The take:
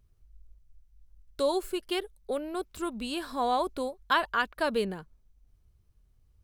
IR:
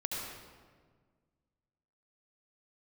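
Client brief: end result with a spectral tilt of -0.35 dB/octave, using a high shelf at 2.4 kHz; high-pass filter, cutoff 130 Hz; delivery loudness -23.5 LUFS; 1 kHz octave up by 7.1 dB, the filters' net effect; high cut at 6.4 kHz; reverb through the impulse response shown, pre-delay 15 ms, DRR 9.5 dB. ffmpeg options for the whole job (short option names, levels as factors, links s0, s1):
-filter_complex "[0:a]highpass=130,lowpass=6400,equalizer=f=1000:t=o:g=7.5,highshelf=f=2400:g=6.5,asplit=2[s0][s1];[1:a]atrim=start_sample=2205,adelay=15[s2];[s1][s2]afir=irnorm=-1:irlink=0,volume=0.224[s3];[s0][s3]amix=inputs=2:normalize=0,volume=1.26"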